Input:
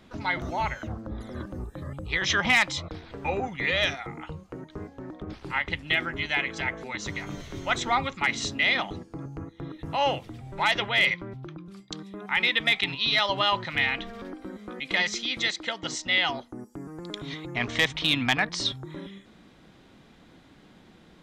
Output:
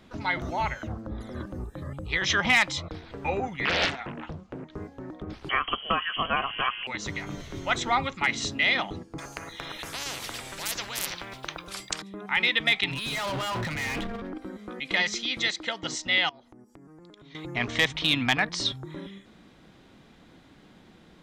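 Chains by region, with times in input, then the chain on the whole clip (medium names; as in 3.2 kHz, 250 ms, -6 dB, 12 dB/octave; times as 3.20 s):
3.65–4.75 s: low-pass 6 kHz + peaking EQ 230 Hz +8.5 dB 0.22 oct + loudspeaker Doppler distortion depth 0.92 ms
5.49–6.87 s: frequency inversion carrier 3.2 kHz + three bands compressed up and down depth 100%
9.18–12.02 s: treble shelf 2.8 kHz +8 dB + spectrum-flattening compressor 10:1
12.91–14.38 s: tone controls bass +5 dB, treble -10 dB + transient shaper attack -3 dB, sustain +11 dB + hard clipper -28.5 dBFS
16.29–17.35 s: treble shelf 9.4 kHz -7 dB + compression 16:1, threshold -47 dBFS
whole clip: none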